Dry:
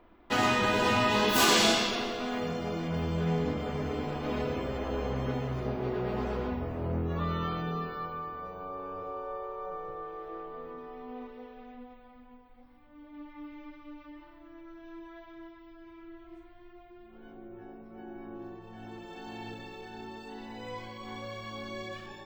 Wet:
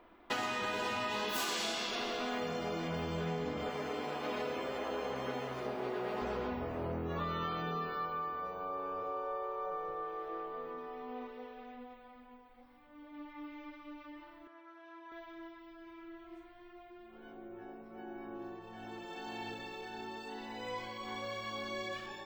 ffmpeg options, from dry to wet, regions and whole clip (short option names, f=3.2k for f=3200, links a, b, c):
-filter_complex "[0:a]asettb=1/sr,asplit=3[a][b][c];[a]atrim=end=3.694[d];[b]atrim=start=3.69:end=6.22,asetpts=PTS-STARTPTS,afade=t=in:d=0.004:c=qsin,afade=t=out:st=2.526:d=0.004:c=qsin,highpass=f=290:p=1,aeval=exprs='sgn(val(0))*max(abs(val(0))-0.001,0)':c=same[e];[c]atrim=start=6.216[f];[d][e]acrossfade=d=0.004:c1=hsin:c2=qsin[g];[g][f]acrossfade=d=0.004:c1=qsin:c2=hsin,asettb=1/sr,asplit=3[h][i][j];[h]atrim=end=14.474[k];[i]atrim=start=14.47:end=15.12,asetpts=PTS-STARTPTS,afade=t=in:d=0.004:c=qsin,afade=t=out:st=0.646:d=0.004:c=qsin,bandpass=f=1k:t=q:w=0.95,aemphasis=mode=production:type=75kf[l];[j]atrim=start=15.116[m];[k][l]acrossfade=d=0.004:c1=hsin:c2=qsin[n];[n][m]acrossfade=d=0.004:c1=qsin:c2=hsin,lowshelf=f=230:g=-11,acompressor=threshold=-34dB:ratio=12,volume=1.5dB"